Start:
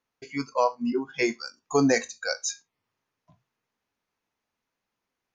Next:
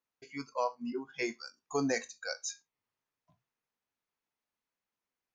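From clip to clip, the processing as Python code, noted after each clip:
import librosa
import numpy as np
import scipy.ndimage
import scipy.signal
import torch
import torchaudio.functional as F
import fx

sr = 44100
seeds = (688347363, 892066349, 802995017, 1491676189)

y = fx.low_shelf(x, sr, hz=430.0, db=-3.0)
y = y * librosa.db_to_amplitude(-8.5)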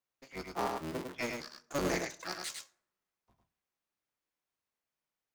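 y = fx.cycle_switch(x, sr, every=3, mode='inverted')
y = y + 10.0 ** (-4.5 / 20.0) * np.pad(y, (int(103 * sr / 1000.0), 0))[:len(y)]
y = fx.rev_plate(y, sr, seeds[0], rt60_s=0.73, hf_ratio=0.55, predelay_ms=0, drr_db=17.5)
y = y * librosa.db_to_amplitude(-2.5)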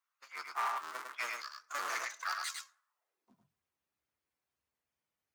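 y = fx.spec_quant(x, sr, step_db=15)
y = np.clip(y, -10.0 ** (-32.0 / 20.0), 10.0 ** (-32.0 / 20.0))
y = fx.filter_sweep_highpass(y, sr, from_hz=1200.0, to_hz=69.0, start_s=2.86, end_s=3.65, q=3.2)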